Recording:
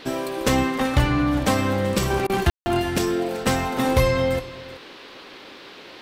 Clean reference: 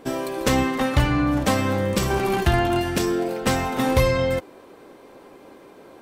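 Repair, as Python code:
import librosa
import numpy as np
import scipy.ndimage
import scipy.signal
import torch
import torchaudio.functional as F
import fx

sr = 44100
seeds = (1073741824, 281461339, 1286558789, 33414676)

y = fx.fix_ambience(x, sr, seeds[0], print_start_s=5.38, print_end_s=5.88, start_s=2.5, end_s=2.66)
y = fx.fix_interpolate(y, sr, at_s=(2.27,), length_ms=24.0)
y = fx.noise_reduce(y, sr, print_start_s=5.38, print_end_s=5.88, reduce_db=6.0)
y = fx.fix_echo_inverse(y, sr, delay_ms=380, level_db=-17.5)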